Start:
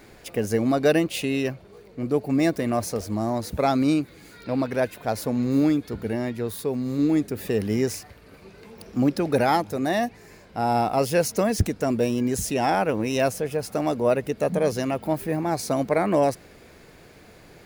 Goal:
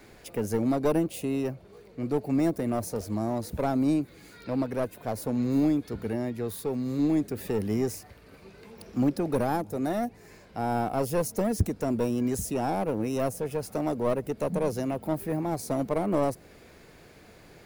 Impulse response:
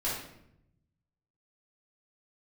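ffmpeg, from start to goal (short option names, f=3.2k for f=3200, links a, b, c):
-filter_complex "[0:a]acrossover=split=320|930|7600[a][b][c][d];[b]aeval=exprs='clip(val(0),-1,0.0355)':c=same[e];[c]acompressor=threshold=-43dB:ratio=6[f];[a][e][f][d]amix=inputs=4:normalize=0,volume=-3dB"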